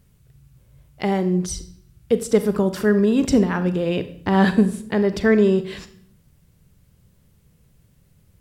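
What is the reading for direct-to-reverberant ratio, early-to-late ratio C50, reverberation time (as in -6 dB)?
10.5 dB, 13.5 dB, 0.65 s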